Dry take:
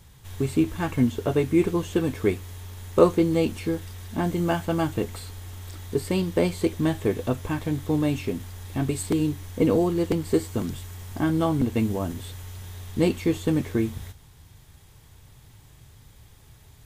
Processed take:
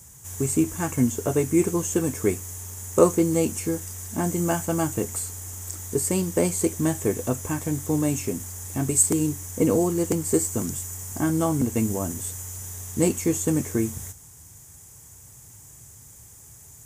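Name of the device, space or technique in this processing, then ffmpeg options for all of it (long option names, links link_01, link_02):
budget condenser microphone: -af "highpass=66,highshelf=frequency=5200:width_type=q:width=3:gain=10.5"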